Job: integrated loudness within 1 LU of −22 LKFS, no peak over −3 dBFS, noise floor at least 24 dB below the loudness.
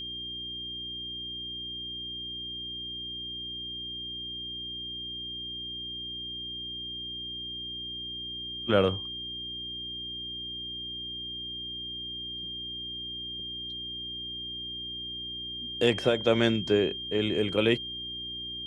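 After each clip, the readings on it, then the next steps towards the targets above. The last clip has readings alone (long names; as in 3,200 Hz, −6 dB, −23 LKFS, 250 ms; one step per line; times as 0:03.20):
mains hum 60 Hz; hum harmonics up to 360 Hz; level of the hum −46 dBFS; interfering tone 3,200 Hz; level of the tone −35 dBFS; integrated loudness −32.0 LKFS; sample peak −9.0 dBFS; target loudness −22.0 LKFS
→ hum removal 60 Hz, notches 6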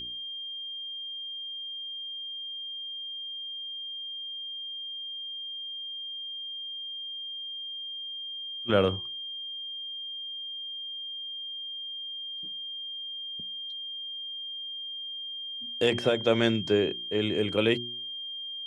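mains hum none found; interfering tone 3,200 Hz; level of the tone −35 dBFS
→ notch filter 3,200 Hz, Q 30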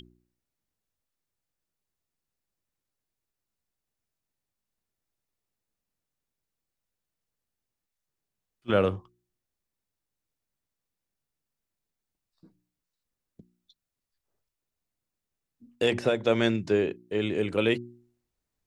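interfering tone none found; integrated loudness −27.0 LKFS; sample peak −9.5 dBFS; target loudness −22.0 LKFS
→ level +5 dB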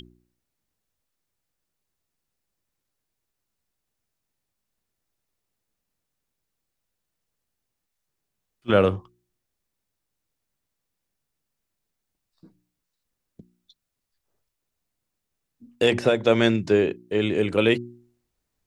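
integrated loudness −22.0 LKFS; sample peak −4.5 dBFS; background noise floor −82 dBFS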